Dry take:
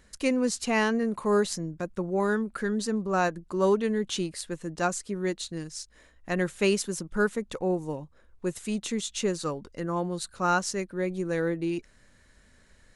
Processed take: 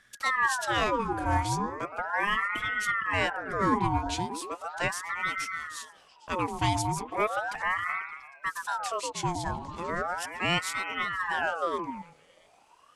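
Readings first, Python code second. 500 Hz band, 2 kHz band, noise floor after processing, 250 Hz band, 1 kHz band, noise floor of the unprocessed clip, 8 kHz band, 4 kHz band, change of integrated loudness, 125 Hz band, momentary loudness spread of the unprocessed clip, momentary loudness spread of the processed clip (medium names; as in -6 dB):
-7.5 dB, +5.0 dB, -60 dBFS, -7.5 dB, +4.5 dB, -59 dBFS, -3.5 dB, +1.5 dB, -0.5 dB, 0.0 dB, 10 LU, 9 LU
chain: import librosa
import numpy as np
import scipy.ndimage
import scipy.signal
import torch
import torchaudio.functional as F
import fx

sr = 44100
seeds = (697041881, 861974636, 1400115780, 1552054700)

y = fx.echo_stepped(x, sr, ms=115, hz=270.0, octaves=0.7, feedback_pct=70, wet_db=-2.5)
y = fx.ring_lfo(y, sr, carrier_hz=1100.0, swing_pct=55, hz=0.37)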